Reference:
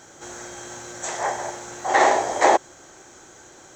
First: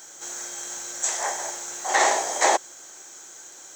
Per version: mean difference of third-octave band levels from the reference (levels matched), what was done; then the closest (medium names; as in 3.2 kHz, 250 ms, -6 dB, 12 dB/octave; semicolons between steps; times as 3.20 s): 6.5 dB: RIAA curve recording; trim -3.5 dB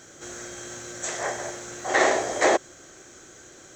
3.0 dB: peaking EQ 880 Hz -11.5 dB 0.47 oct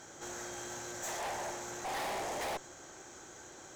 11.0 dB: valve stage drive 33 dB, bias 0.4; trim -3 dB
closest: second